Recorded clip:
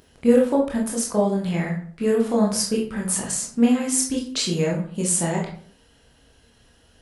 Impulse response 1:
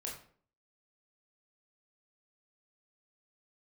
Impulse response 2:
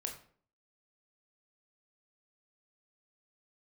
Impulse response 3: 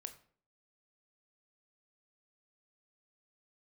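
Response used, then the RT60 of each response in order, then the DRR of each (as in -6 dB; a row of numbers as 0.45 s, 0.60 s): 1; 0.50 s, 0.50 s, 0.50 s; -2.5 dB, 2.0 dB, 8.0 dB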